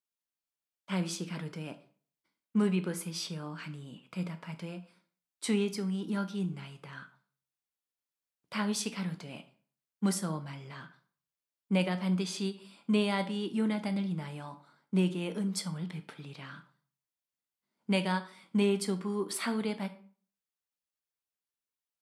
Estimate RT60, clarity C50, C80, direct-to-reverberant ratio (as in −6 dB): 0.45 s, 15.0 dB, 18.5 dB, 9.0 dB